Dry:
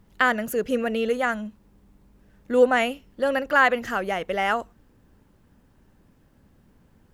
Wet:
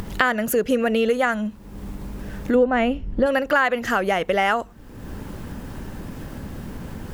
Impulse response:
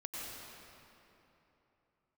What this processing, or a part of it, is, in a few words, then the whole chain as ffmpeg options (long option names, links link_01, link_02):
upward and downward compression: -filter_complex "[0:a]asplit=3[link_01][link_02][link_03];[link_01]afade=type=out:start_time=2.54:duration=0.02[link_04];[link_02]aemphasis=mode=reproduction:type=riaa,afade=type=in:start_time=2.54:duration=0.02,afade=type=out:start_time=3.25:duration=0.02[link_05];[link_03]afade=type=in:start_time=3.25:duration=0.02[link_06];[link_04][link_05][link_06]amix=inputs=3:normalize=0,acompressor=mode=upward:threshold=-24dB:ratio=2.5,acompressor=threshold=-23dB:ratio=4,volume=7dB"